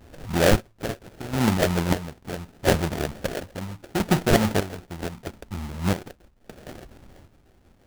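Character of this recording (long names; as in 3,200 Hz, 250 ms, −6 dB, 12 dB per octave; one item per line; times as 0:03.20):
chopped level 0.75 Hz, depth 65%, duty 45%
phaser sweep stages 8, 2.9 Hz, lowest notch 340–1,300 Hz
aliases and images of a low sample rate 1,100 Hz, jitter 20%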